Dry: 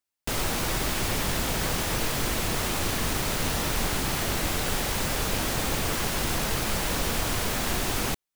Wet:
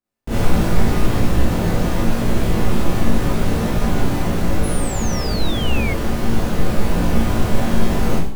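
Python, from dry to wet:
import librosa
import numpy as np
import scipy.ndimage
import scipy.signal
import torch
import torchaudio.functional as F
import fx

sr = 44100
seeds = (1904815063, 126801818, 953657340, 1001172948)

p1 = 10.0 ** (-29.0 / 20.0) * np.tanh(x / 10.0 ** (-29.0 / 20.0))
p2 = x + (p1 * 10.0 ** (-4.0 / 20.0))
p3 = fx.doubler(p2, sr, ms=18.0, db=-4.0)
p4 = fx.rev_schroeder(p3, sr, rt60_s=0.62, comb_ms=31, drr_db=-9.5)
p5 = fx.spec_paint(p4, sr, seeds[0], shape='fall', start_s=4.63, length_s=1.31, low_hz=2100.0, high_hz=11000.0, level_db=-12.0)
p6 = fx.high_shelf(p5, sr, hz=2200.0, db=-11.0)
p7 = fx.rider(p6, sr, range_db=4, speed_s=2.0)
p8 = fx.low_shelf(p7, sr, hz=400.0, db=10.5)
y = p8 * 10.0 ** (-9.5 / 20.0)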